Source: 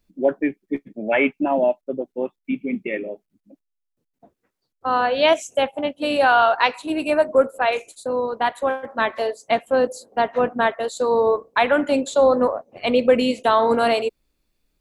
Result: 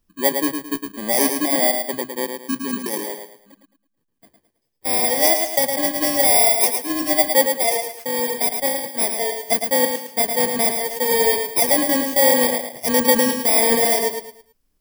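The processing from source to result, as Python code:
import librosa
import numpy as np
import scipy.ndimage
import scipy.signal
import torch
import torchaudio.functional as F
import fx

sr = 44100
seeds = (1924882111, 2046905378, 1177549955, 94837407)

y = fx.bit_reversed(x, sr, seeds[0], block=32)
y = fx.echo_feedback(y, sr, ms=109, feedback_pct=32, wet_db=-6.0)
y = fx.band_squash(y, sr, depth_pct=70, at=(5.27, 6.1))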